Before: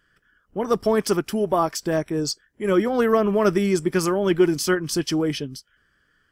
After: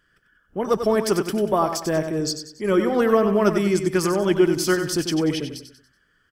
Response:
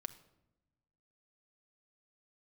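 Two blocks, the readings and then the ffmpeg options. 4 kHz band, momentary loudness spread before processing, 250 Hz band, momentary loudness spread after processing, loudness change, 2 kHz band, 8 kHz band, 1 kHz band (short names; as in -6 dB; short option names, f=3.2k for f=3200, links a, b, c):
+0.5 dB, 9 LU, +0.5 dB, 9 LU, +0.5 dB, +0.5 dB, +0.5 dB, +0.5 dB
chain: -af "aecho=1:1:94|188|282|376:0.376|0.15|0.0601|0.0241"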